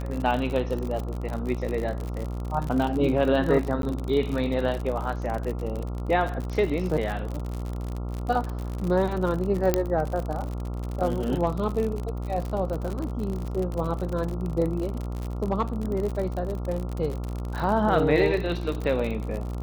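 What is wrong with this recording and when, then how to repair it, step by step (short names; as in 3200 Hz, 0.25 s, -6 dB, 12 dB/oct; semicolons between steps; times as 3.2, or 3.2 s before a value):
buzz 60 Hz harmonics 23 -31 dBFS
crackle 58/s -29 dBFS
3.82–3.83 gap 12 ms
9.74 pop -7 dBFS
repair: de-click; de-hum 60 Hz, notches 23; interpolate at 3.82, 12 ms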